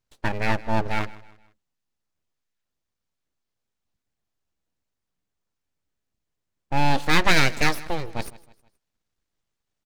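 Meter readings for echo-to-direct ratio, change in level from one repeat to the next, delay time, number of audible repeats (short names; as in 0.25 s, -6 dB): -19.0 dB, -7.5 dB, 0.158 s, 2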